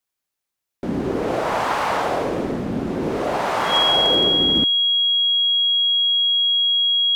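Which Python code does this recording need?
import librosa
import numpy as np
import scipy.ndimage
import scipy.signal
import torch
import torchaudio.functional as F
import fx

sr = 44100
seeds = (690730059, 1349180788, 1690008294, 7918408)

y = fx.fix_declip(x, sr, threshold_db=-9.5)
y = fx.notch(y, sr, hz=3300.0, q=30.0)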